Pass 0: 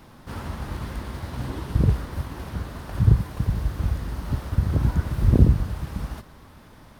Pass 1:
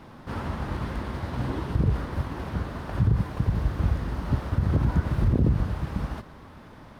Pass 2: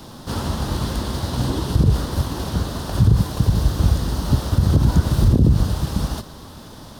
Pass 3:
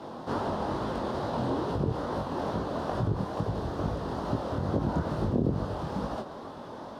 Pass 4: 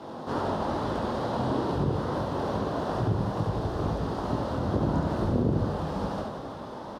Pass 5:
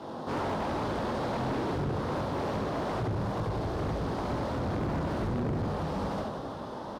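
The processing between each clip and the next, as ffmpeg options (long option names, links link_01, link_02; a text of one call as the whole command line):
ffmpeg -i in.wav -af "lowpass=frequency=2500:poles=1,lowshelf=frequency=74:gain=-6.5,alimiter=limit=-16.5dB:level=0:latency=1:release=67,volume=3.5dB" out.wav
ffmpeg -i in.wav -filter_complex "[0:a]highshelf=frequency=2200:gain=-10.5,acrossover=split=330[link_01][link_02];[link_02]acompressor=threshold=-33dB:ratio=6[link_03];[link_01][link_03]amix=inputs=2:normalize=0,aexciter=amount=9:drive=6.5:freq=3300,volume=7.5dB" out.wav
ffmpeg -i in.wav -filter_complex "[0:a]asplit=2[link_01][link_02];[link_02]acompressor=threshold=-26dB:ratio=6,volume=2dB[link_03];[link_01][link_03]amix=inputs=2:normalize=0,bandpass=frequency=630:width_type=q:width=0.95:csg=0,flanger=delay=18:depth=7.6:speed=2.3" out.wav
ffmpeg -i in.wav -af "aecho=1:1:70|175|332.5|568.8|923.1:0.631|0.398|0.251|0.158|0.1" out.wav
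ffmpeg -i in.wav -af "asoftclip=type=hard:threshold=-28dB" out.wav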